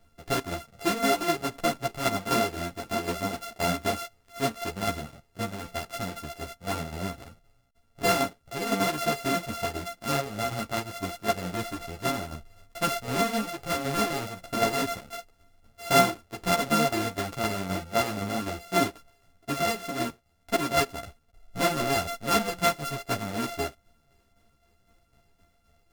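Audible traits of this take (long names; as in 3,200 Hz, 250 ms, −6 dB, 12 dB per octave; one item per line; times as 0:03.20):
a buzz of ramps at a fixed pitch in blocks of 64 samples
tremolo saw down 3.9 Hz, depth 55%
a shimmering, thickened sound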